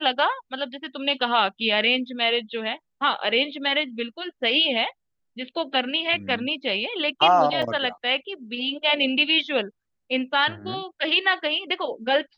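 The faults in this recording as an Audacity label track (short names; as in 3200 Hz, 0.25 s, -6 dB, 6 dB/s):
7.620000	7.630000	gap 5.3 ms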